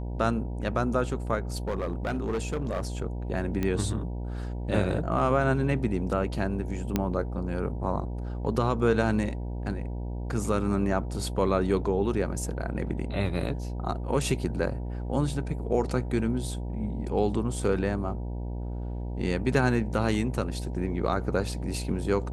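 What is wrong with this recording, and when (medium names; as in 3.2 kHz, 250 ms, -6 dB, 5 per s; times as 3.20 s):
buzz 60 Hz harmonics 16 -33 dBFS
1.56–2.81 s: clipped -24.5 dBFS
3.63 s: pop -16 dBFS
6.96 s: pop -11 dBFS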